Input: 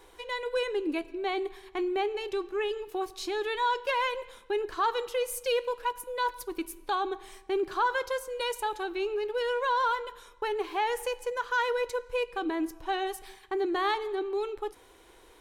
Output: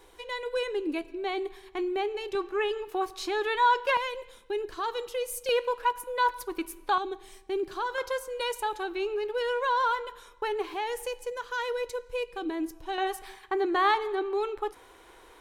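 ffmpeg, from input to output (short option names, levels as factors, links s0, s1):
-af "asetnsamples=n=441:p=0,asendcmd='2.35 equalizer g 6;3.97 equalizer g -5.5;5.49 equalizer g 5;6.98 equalizer g -6;7.98 equalizer g 1;10.74 equalizer g -5.5;12.98 equalizer g 6',equalizer=f=1200:t=o:w=2:g=-1.5"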